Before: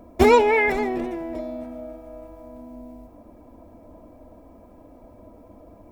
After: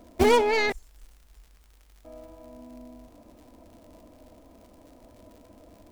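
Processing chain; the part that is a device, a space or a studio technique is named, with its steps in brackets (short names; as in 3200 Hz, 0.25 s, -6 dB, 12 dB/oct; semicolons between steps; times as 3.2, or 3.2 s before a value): 0.72–2.05 inverse Chebyshev band-stop 140–2800 Hz, stop band 50 dB; record under a worn stylus (tracing distortion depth 0.14 ms; crackle 110/s -40 dBFS; pink noise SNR 37 dB); gain -5 dB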